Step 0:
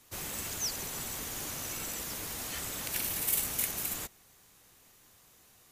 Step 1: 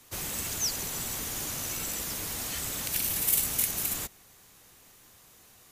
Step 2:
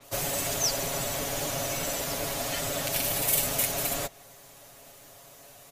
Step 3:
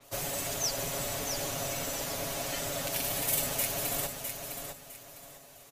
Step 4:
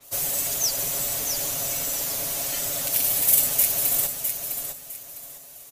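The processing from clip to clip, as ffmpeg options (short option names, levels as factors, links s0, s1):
-filter_complex "[0:a]acrossover=split=240|3000[s0][s1][s2];[s1]acompressor=threshold=0.00562:ratio=6[s3];[s0][s3][s2]amix=inputs=3:normalize=0,volume=1.68"
-af "equalizer=f=620:t=o:w=0.5:g=14.5,aecho=1:1:7.2:0.76,adynamicequalizer=threshold=0.00794:dfrequency=5700:dqfactor=0.7:tfrequency=5700:tqfactor=0.7:attack=5:release=100:ratio=0.375:range=2.5:mode=cutabove:tftype=highshelf,volume=1.33"
-af "aecho=1:1:656|1312|1968|2624:0.473|0.132|0.0371|0.0104,volume=0.596"
-af "crystalizer=i=2.5:c=0,volume=0.891"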